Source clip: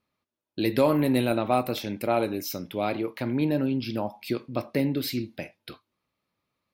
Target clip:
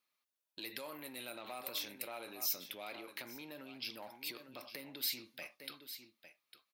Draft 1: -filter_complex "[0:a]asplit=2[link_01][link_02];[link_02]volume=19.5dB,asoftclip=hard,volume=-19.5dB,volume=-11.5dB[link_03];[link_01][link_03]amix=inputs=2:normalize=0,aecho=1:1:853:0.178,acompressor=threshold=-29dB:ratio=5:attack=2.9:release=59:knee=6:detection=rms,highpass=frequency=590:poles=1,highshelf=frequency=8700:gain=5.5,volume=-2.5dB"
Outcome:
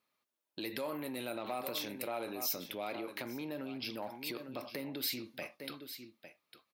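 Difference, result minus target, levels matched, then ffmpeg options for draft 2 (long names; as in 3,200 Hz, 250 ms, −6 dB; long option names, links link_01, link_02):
500 Hz band +6.0 dB; gain into a clipping stage and back: distortion −7 dB
-filter_complex "[0:a]asplit=2[link_01][link_02];[link_02]volume=27.5dB,asoftclip=hard,volume=-27.5dB,volume=-11.5dB[link_03];[link_01][link_03]amix=inputs=2:normalize=0,aecho=1:1:853:0.178,acompressor=threshold=-29dB:ratio=5:attack=2.9:release=59:knee=6:detection=rms,highpass=frequency=2200:poles=1,highshelf=frequency=8700:gain=5.5,volume=-2.5dB"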